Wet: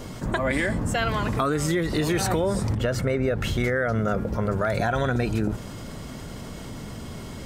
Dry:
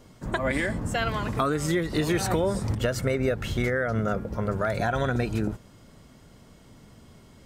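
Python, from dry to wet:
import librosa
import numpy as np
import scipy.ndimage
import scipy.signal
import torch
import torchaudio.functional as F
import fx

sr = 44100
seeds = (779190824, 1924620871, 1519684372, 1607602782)

y = fx.high_shelf(x, sr, hz=4100.0, db=-8.0, at=(2.73, 3.41))
y = fx.env_flatten(y, sr, amount_pct=50)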